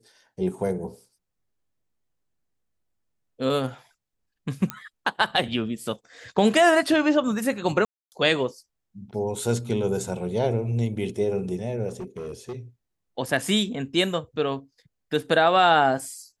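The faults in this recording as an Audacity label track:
4.700000	4.700000	click −13 dBFS
7.850000	8.120000	drop-out 269 ms
11.880000	12.580000	clipping −30 dBFS

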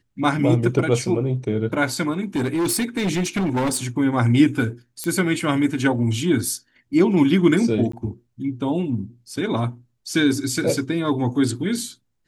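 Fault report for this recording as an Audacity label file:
2.350000	3.770000	clipping −18 dBFS
5.040000	5.040000	click −12 dBFS
7.920000	7.930000	drop-out 14 ms

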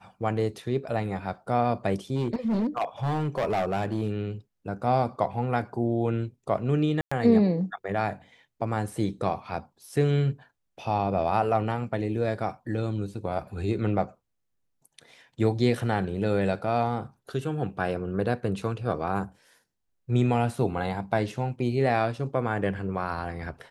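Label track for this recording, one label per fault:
2.150000	4.210000	clipping −22 dBFS
7.010000	7.120000	drop-out 105 ms

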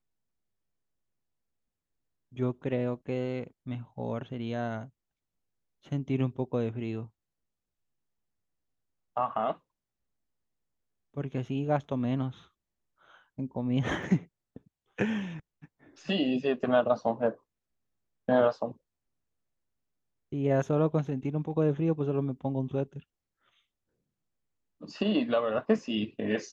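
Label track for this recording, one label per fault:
14.030000	14.030000	drop-out 2.1 ms

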